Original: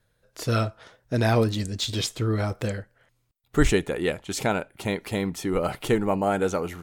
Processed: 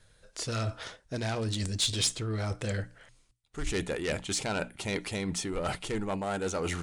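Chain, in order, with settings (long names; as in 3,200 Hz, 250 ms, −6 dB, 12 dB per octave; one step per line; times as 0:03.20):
phase distortion by the signal itself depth 0.16 ms
low-shelf EQ 68 Hz +8.5 dB
mains-hum notches 60/120/180/240/300 Hz
reversed playback
downward compressor 10 to 1, threshold −32 dBFS, peak gain reduction 21.5 dB
reversed playback
downsampling to 22,050 Hz
in parallel at −7.5 dB: soft clipping −38.5 dBFS, distortion −8 dB
on the sum: high-shelf EQ 2,400 Hz +9 dB
level +1 dB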